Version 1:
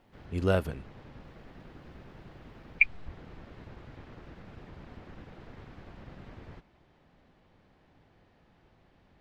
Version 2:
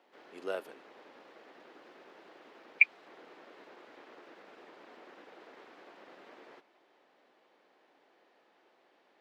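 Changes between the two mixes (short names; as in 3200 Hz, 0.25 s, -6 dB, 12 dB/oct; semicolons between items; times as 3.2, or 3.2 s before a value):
background -8.5 dB; master: add HPF 340 Hz 24 dB/oct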